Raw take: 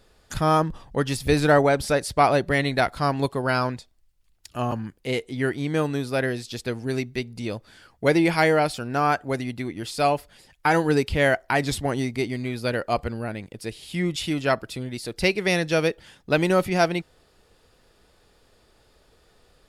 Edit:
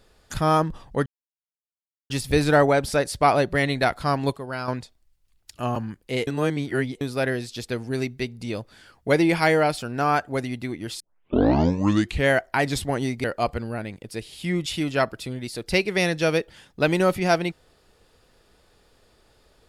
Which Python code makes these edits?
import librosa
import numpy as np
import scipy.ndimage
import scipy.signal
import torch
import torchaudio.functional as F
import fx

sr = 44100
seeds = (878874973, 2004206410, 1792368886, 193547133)

y = fx.edit(x, sr, fx.insert_silence(at_s=1.06, length_s=1.04),
    fx.clip_gain(start_s=3.33, length_s=0.31, db=-8.0),
    fx.reverse_span(start_s=5.23, length_s=0.74),
    fx.tape_start(start_s=9.96, length_s=1.3),
    fx.cut(start_s=12.2, length_s=0.54), tone=tone)